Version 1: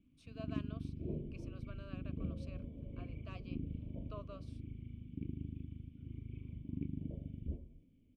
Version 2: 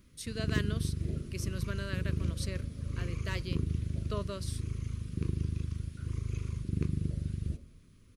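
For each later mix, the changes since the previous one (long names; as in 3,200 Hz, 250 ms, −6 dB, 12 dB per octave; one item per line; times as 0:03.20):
speech: remove formant filter a
first sound: remove formant resonators in series i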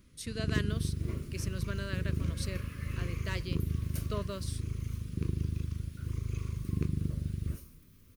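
second sound: remove Butterworth low-pass 870 Hz 96 dB per octave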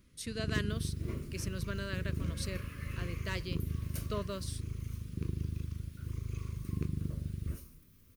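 first sound −3.5 dB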